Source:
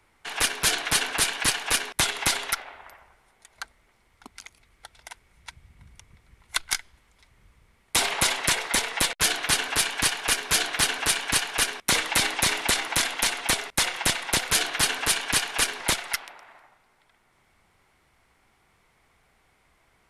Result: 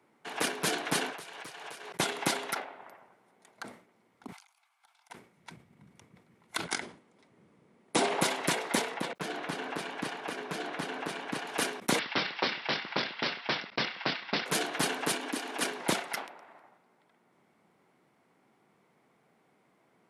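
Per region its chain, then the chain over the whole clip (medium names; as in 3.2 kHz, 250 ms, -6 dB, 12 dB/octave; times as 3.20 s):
1.10–2.00 s: peaking EQ 250 Hz -13.5 dB 0.7 oct + compression 12:1, threshold -33 dBFS + loudspeaker Doppler distortion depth 0.48 ms
4.32–5.10 s: steep high-pass 730 Hz 72 dB/octave + band-stop 1.9 kHz, Q 6.5 + compression, threshold -54 dBFS
6.64–8.22 s: brick-wall FIR low-pass 11 kHz + peaking EQ 370 Hz +5 dB 2.1 oct
8.94–11.47 s: low-pass 2.5 kHz 6 dB/octave + compression 5:1, threshold -27 dBFS
11.99–14.46 s: high-pass 1.5 kHz + careless resampling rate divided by 4×, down none, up filtered
15.12–15.61 s: resonant low shelf 180 Hz -12 dB, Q 3 + compression, threshold -27 dBFS
whole clip: high-pass 170 Hz 24 dB/octave; tilt shelf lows +8 dB, about 860 Hz; decay stretcher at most 120 dB/s; trim -2.5 dB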